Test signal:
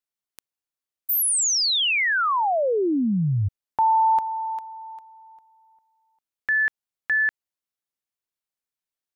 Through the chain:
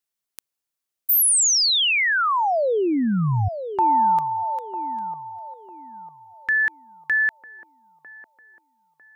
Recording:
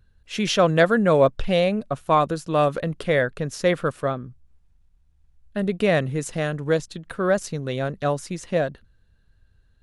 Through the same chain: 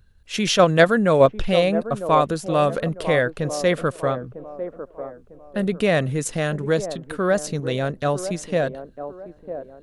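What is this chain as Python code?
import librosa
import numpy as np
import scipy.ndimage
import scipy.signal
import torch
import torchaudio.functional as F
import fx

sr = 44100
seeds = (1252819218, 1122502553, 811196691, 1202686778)

p1 = fx.high_shelf(x, sr, hz=4900.0, db=4.5)
p2 = fx.level_steps(p1, sr, step_db=15)
p3 = p1 + F.gain(torch.from_numpy(p2), -3.0).numpy()
p4 = fx.echo_wet_bandpass(p3, sr, ms=950, feedback_pct=35, hz=480.0, wet_db=-9.5)
y = F.gain(torch.from_numpy(p4), -1.0).numpy()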